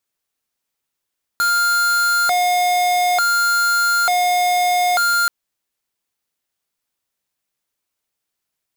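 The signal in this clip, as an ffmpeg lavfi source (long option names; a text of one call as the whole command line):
ffmpeg -f lavfi -i "aevalsrc='0.15*(2*lt(mod((1058.5*t+341.5/0.56*(0.5-abs(mod(0.56*t,1)-0.5))),1),0.5)-1)':duration=3.88:sample_rate=44100" out.wav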